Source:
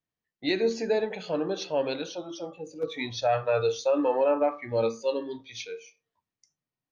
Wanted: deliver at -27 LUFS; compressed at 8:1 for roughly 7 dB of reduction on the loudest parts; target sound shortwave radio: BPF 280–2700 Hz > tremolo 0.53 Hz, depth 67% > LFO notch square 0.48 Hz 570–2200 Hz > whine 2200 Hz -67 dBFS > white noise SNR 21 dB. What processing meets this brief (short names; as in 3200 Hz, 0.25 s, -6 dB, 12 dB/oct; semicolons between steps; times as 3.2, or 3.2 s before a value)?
compressor 8:1, threshold -27 dBFS; BPF 280–2700 Hz; tremolo 0.53 Hz, depth 67%; LFO notch square 0.48 Hz 570–2200 Hz; whine 2200 Hz -67 dBFS; white noise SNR 21 dB; gain +15.5 dB